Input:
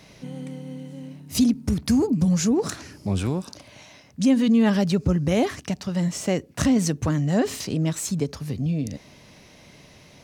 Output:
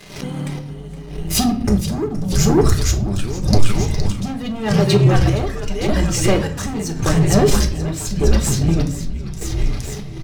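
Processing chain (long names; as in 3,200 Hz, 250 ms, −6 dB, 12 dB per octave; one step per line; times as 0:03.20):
reverb reduction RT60 1.7 s
0:04.80–0:06.60: high-pass filter 200 Hz 24 dB per octave
echo with shifted repeats 467 ms, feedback 55%, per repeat −97 Hz, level −4 dB
leveller curve on the samples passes 3
in parallel at +2.5 dB: downward compressor, threshold −27 dBFS, peak gain reduction 14.5 dB
on the sum: square-wave tremolo 0.85 Hz, depth 65%, duty 50%
convolution reverb RT60 0.50 s, pre-delay 5 ms, DRR 3 dB
background raised ahead of every attack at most 93 dB per second
level −5 dB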